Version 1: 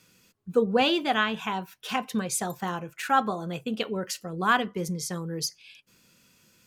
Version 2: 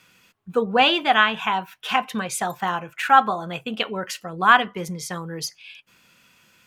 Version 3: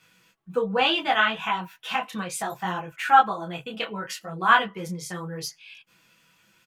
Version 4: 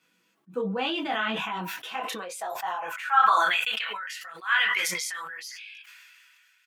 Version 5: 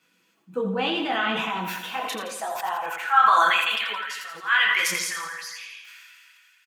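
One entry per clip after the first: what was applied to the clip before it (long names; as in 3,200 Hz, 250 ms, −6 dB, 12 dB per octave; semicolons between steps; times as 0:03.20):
flat-topped bell 1,500 Hz +8.5 dB 2.7 octaves
comb filter 6.1 ms, depth 46%; micro pitch shift up and down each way 24 cents; level −1 dB
high-pass filter sweep 250 Hz → 1,800 Hz, 0:01.64–0:03.55; level that may fall only so fast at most 23 dB per second; level −9 dB
repeating echo 84 ms, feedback 57%, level −8 dB; level +2.5 dB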